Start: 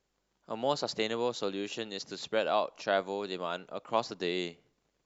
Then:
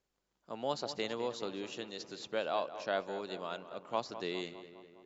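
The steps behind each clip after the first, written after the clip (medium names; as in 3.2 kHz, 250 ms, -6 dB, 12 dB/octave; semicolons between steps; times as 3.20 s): filtered feedback delay 204 ms, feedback 61%, low-pass 3.1 kHz, level -12 dB; trim -5.5 dB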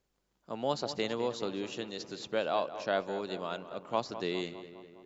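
bass shelf 290 Hz +5 dB; trim +2.5 dB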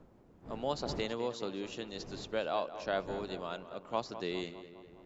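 wind noise 400 Hz -48 dBFS; trim -3 dB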